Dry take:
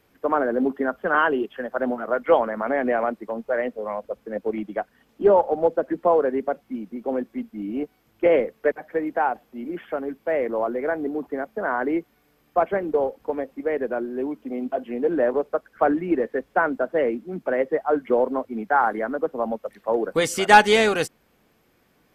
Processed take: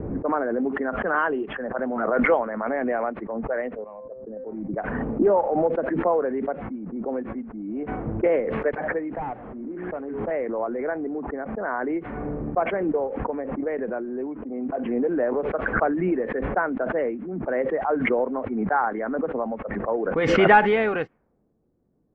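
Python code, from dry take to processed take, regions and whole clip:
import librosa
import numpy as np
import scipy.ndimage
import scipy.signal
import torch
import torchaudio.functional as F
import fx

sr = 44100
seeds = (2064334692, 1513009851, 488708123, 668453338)

y = fx.chain(x, sr, fx.median_filter(points=25),
    fx.comb_fb(f0_hz=130.0, decay_s=0.22, harmonics='all', damping=0.0, mix_pct=70),
    fx.band_widen(depth_pct=40), at=(3.84, 4.74))
y = fx.chain(y, sr, fx.delta_mod(bps=32000, step_db=-41.0),
    fx.hum_notches(base_hz=60, count=9), at=(9.15, 10.31))
y = fx.env_lowpass(y, sr, base_hz=380.0, full_db=-17.5)
y = scipy.signal.sosfilt(scipy.signal.butter(4, 2300.0, 'lowpass', fs=sr, output='sos'), y)
y = fx.pre_swell(y, sr, db_per_s=30.0)
y = y * 10.0 ** (-3.5 / 20.0)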